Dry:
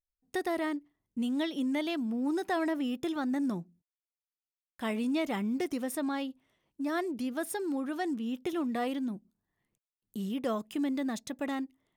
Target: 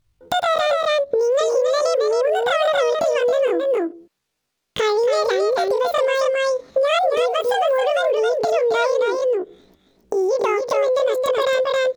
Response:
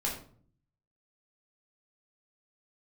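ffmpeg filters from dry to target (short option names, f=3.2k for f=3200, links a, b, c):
-filter_complex "[0:a]bass=f=250:g=13,treble=f=4k:g=-11,asetrate=85689,aresample=44100,atempo=0.514651,asplit=2[a][b];[b]aecho=0:1:271:0.562[c];[a][c]amix=inputs=2:normalize=0,acompressor=threshold=-39dB:ratio=10,lowshelf=f=340:g=-10.5,alimiter=level_in=34.5dB:limit=-1dB:release=50:level=0:latency=1,volume=-8.5dB"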